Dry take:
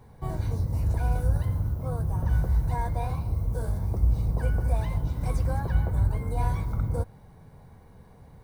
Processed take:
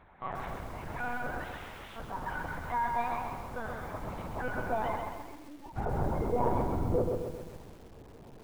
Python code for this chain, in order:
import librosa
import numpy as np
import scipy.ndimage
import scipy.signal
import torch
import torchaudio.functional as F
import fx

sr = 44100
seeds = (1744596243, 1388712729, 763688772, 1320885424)

p1 = fx.peak_eq(x, sr, hz=2100.0, db=3.0, octaves=2.9, at=(3.56, 4.26))
p2 = fx.vowel_filter(p1, sr, vowel='u', at=(4.96, 5.77))
p3 = fx.filter_sweep_bandpass(p2, sr, from_hz=1600.0, to_hz=360.0, start_s=3.86, end_s=6.87, q=0.99)
p4 = fx.overflow_wrap(p3, sr, gain_db=48.0, at=(1.44, 1.96), fade=0.02)
p5 = fx.spec_erase(p4, sr, start_s=5.2, length_s=0.44, low_hz=700.0, high_hz=1700.0)
p6 = p5 + fx.echo_tape(p5, sr, ms=186, feedback_pct=25, wet_db=-9.5, lp_hz=1200.0, drive_db=33.0, wow_cents=20, dry=0)
p7 = fx.lpc_vocoder(p6, sr, seeds[0], excitation='pitch_kept', order=10)
p8 = fx.echo_crushed(p7, sr, ms=132, feedback_pct=55, bits=10, wet_db=-4.0)
y = F.gain(torch.from_numpy(p8), 6.5).numpy()